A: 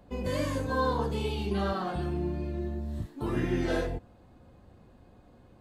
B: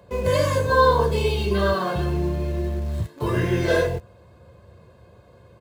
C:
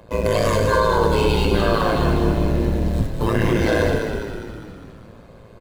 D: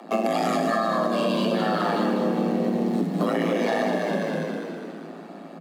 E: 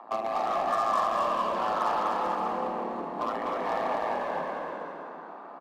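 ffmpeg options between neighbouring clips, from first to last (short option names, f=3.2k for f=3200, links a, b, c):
-filter_complex "[0:a]highpass=f=71:w=0.5412,highpass=f=71:w=1.3066,aecho=1:1:1.9:0.75,asplit=2[a][b];[b]acrusher=bits=6:mix=0:aa=0.000001,volume=-11dB[c];[a][c]amix=inputs=2:normalize=0,volume=5.5dB"
-filter_complex "[0:a]alimiter=limit=-16dB:level=0:latency=1:release=13,tremolo=f=110:d=0.947,asplit=2[a][b];[b]asplit=8[c][d][e][f][g][h][i][j];[c]adelay=203,afreqshift=-44,volume=-5.5dB[k];[d]adelay=406,afreqshift=-88,volume=-10.4dB[l];[e]adelay=609,afreqshift=-132,volume=-15.3dB[m];[f]adelay=812,afreqshift=-176,volume=-20.1dB[n];[g]adelay=1015,afreqshift=-220,volume=-25dB[o];[h]adelay=1218,afreqshift=-264,volume=-29.9dB[p];[i]adelay=1421,afreqshift=-308,volume=-34.8dB[q];[j]adelay=1624,afreqshift=-352,volume=-39.7dB[r];[k][l][m][n][o][p][q][r]amix=inputs=8:normalize=0[s];[a][s]amix=inputs=2:normalize=0,volume=8.5dB"
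-af "highshelf=f=10k:g=-6.5,afreqshift=160,acompressor=threshold=-24dB:ratio=6,volume=3.5dB"
-filter_complex "[0:a]bandpass=f=1k:t=q:w=4:csg=0,asplit=2[a][b];[b]aeval=exprs='0.0158*(abs(mod(val(0)/0.0158+3,4)-2)-1)':c=same,volume=-8dB[c];[a][c]amix=inputs=2:normalize=0,aecho=1:1:250|437.5|578.1|683.6|762.7:0.631|0.398|0.251|0.158|0.1,volume=3.5dB"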